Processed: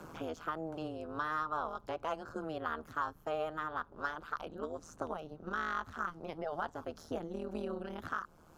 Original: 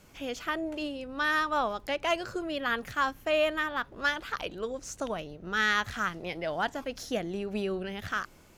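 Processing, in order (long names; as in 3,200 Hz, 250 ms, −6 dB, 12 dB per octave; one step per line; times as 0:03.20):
high shelf with overshoot 1,600 Hz −6.5 dB, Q 3
amplitude modulation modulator 160 Hz, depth 95%
multiband upward and downward compressor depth 70%
level −5.5 dB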